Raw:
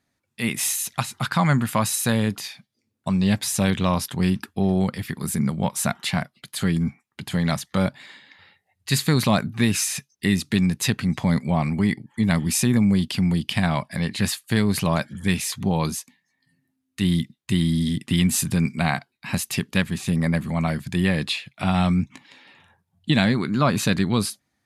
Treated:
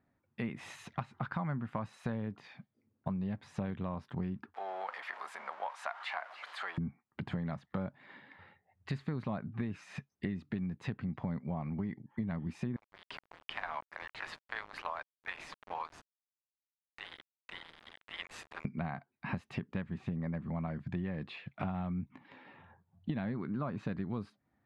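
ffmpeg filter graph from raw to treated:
-filter_complex "[0:a]asettb=1/sr,asplit=3[a][b][c];[a]atrim=end=4.544[d];[b]atrim=start=4.54:end=6.78,asetpts=PTS-STARTPTS,afade=t=in:d=0.004:c=qsin,afade=t=out:st=2.236:d=0.004:c=qsin,aeval=exprs='val(0)+0.5*0.0266*sgn(val(0))':c=same,highpass=f=750:w=0.5412,highpass=f=750:w=1.3066[e];[c]atrim=start=6.776[f];[d][e]acrossfade=d=0.004:c1=hsin:c2=qsin[g];[g][f]acrossfade=d=0.004:c1=qsin:c2=hsin,asettb=1/sr,asplit=3[h][i][j];[h]atrim=end=12.764[k];[i]atrim=start=12.76:end=18.65,asetpts=PTS-STARTPTS,afade=t=in:d=0.004:c=qsin,afade=t=out:st=5.886:d=0.004:c=qsin,highpass=f=830:w=0.5412,highpass=f=830:w=1.3066,tremolo=f=160:d=0.462,aeval=exprs='val(0)*gte(abs(val(0)),0.0178)':c=same[l];[j]atrim=start=18.646[m];[k][l]acrossfade=d=0.004:c1=hsin:c2=qsin[n];[n][m]acrossfade=d=0.004:c1=qsin:c2=hsin,lowpass=1.4k,acompressor=threshold=-35dB:ratio=6"

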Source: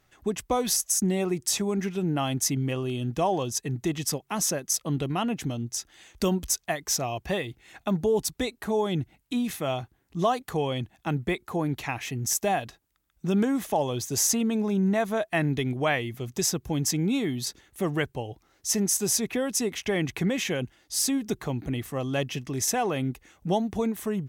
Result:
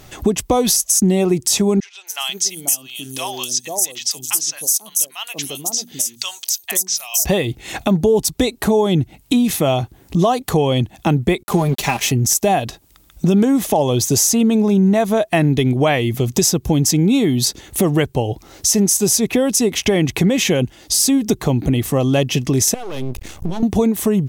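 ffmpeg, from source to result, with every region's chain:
-filter_complex "[0:a]asettb=1/sr,asplit=3[a][b][c];[a]atrim=end=1.804[d];[b]atrim=start=1.8:end=7.25,asetpts=PTS-STARTPTS,afade=t=in:d=0.004:c=qsin,afade=t=out:st=5.446:d=0.004:c=qsin,aderivative,bandreject=f=60:t=h:w=6,bandreject=f=120:t=h:w=6,bandreject=f=180:t=h:w=6,bandreject=f=240:t=h:w=6,bandreject=f=300:t=h:w=6,acrossover=split=760|5800[e][f][g];[g]adelay=270[h];[e]adelay=490[i];[i][f][h]amix=inputs=3:normalize=0,atrim=end_sample=240345[j];[c]atrim=start=7.246[k];[d][j]acrossfade=d=0.004:c1=hsin:c2=qsin[l];[l][k]acrossfade=d=0.004:c1=qsin:c2=hsin,asettb=1/sr,asplit=3[m][n][o];[m]atrim=end=11.434[p];[n]atrim=start=11.43:end=12.12,asetpts=PTS-STARTPTS,afade=t=in:d=0.004:c=qsin,afade=t=out:st=0.686:d=0.004:c=qsin,bass=f=250:g=-1,treble=f=4k:g=4,aecho=1:1:5:0.79,atrim=end_sample=30429,aeval=exprs='sgn(val(0))*max(abs(val(0))-0.00668,0)':c=same[q];[o]atrim=start=12.116[r];[p][q]acrossfade=d=0.004:c1=hsin:c2=qsin[s];[s][r]acrossfade=d=0.004:c1=qsin:c2=hsin,asettb=1/sr,asplit=3[t][u][v];[t]atrim=end=22.744[w];[u]atrim=start=22.74:end=23.63,asetpts=PTS-STARTPTS,afade=t=in:d=0.004:c=qsin,afade=t=out:st=0.886:d=0.004:c=qsin,asubboost=boost=9.5:cutoff=200,acompressor=threshold=-40dB:ratio=3:attack=3.2:release=140:knee=1:detection=peak,aeval=exprs='max(val(0),0)':c=same[x];[v]atrim=start=23.626[y];[w][x]acrossfade=d=0.004:c1=hsin:c2=qsin[z];[z][y]acrossfade=d=0.004:c1=qsin:c2=hsin,equalizer=f=1.6k:w=1.1:g=-7.5,acompressor=threshold=-45dB:ratio=2.5,alimiter=level_in=29.5dB:limit=-1dB:release=50:level=0:latency=1,volume=-4dB"

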